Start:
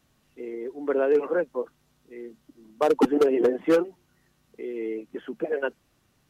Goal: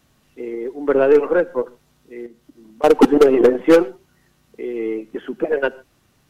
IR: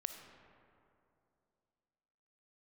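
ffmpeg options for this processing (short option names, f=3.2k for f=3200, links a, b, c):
-filter_complex "[0:a]asettb=1/sr,asplit=3[a][b][c];[a]atrim=end=2.264[d];[b]atrim=start=2.26:end=2.84,asetpts=PTS-STARTPTS,afade=t=in:d=0.004:c=qsin,afade=t=out:st=0.576:d=0.004:c=qsin,acompressor=threshold=-48dB:ratio=3[e];[c]atrim=start=2.836[f];[d][e]acrossfade=d=0.004:c1=hsin:c2=qsin[g];[g][f]acrossfade=d=0.004:c1=qsin:c2=hsin,aeval=exprs='0.335*(cos(1*acos(clip(val(0)/0.335,-1,1)))-cos(1*PI/2))+0.0106*(cos(4*acos(clip(val(0)/0.335,-1,1)))-cos(4*PI/2))+0.00944*(cos(7*acos(clip(val(0)/0.335,-1,1)))-cos(7*PI/2))':c=same,asplit=2[h][i];[1:a]atrim=start_sample=2205,afade=t=out:st=0.23:d=0.01,atrim=end_sample=10584,asetrate=52920,aresample=44100[j];[i][j]afir=irnorm=-1:irlink=0,volume=-6.5dB[k];[h][k]amix=inputs=2:normalize=0,volume=6.5dB"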